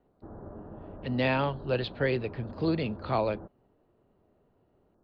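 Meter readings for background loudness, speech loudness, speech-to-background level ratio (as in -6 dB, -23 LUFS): -45.5 LUFS, -30.5 LUFS, 15.0 dB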